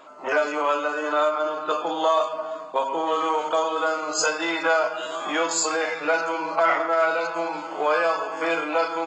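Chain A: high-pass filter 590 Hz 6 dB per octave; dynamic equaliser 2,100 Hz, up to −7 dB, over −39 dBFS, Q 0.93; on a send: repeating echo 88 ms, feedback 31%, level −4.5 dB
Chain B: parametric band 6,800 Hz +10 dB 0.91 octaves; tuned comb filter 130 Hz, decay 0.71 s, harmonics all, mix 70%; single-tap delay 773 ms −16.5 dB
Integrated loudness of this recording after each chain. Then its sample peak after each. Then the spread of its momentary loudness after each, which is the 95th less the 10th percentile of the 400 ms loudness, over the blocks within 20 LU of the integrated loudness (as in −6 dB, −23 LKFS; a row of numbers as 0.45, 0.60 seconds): −26.5, −31.0 LKFS; −11.5, −12.0 dBFS; 5, 9 LU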